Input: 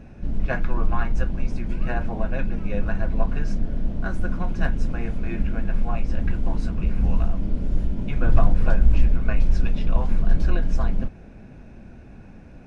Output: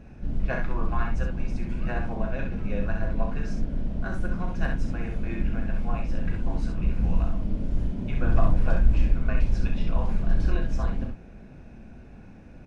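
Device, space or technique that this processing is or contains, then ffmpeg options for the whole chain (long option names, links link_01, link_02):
slapback doubling: -filter_complex "[0:a]asplit=3[link_01][link_02][link_03];[link_02]adelay=36,volume=-8dB[link_04];[link_03]adelay=65,volume=-5dB[link_05];[link_01][link_04][link_05]amix=inputs=3:normalize=0,volume=-4dB"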